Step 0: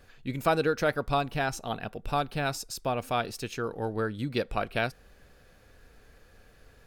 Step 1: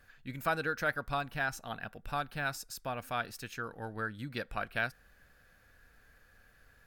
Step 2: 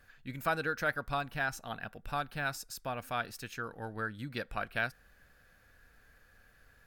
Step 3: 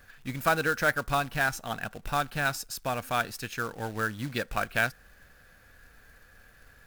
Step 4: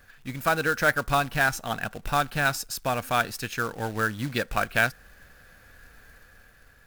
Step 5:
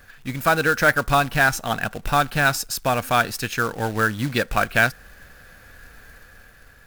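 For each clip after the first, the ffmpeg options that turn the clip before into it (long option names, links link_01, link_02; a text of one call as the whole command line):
ffmpeg -i in.wav -af "equalizer=frequency=400:width_type=o:width=0.67:gain=-6,equalizer=frequency=1600:width_type=o:width=0.67:gain=9,equalizer=frequency=16000:width_type=o:width=0.67:gain=9,volume=-8dB" out.wav
ffmpeg -i in.wav -af anull out.wav
ffmpeg -i in.wav -af "acrusher=bits=3:mode=log:mix=0:aa=0.000001,volume=6.5dB" out.wav
ffmpeg -i in.wav -af "dynaudnorm=framelen=150:gausssize=9:maxgain=4dB" out.wav
ffmpeg -i in.wav -af "asoftclip=type=tanh:threshold=-10.5dB,volume=6dB" out.wav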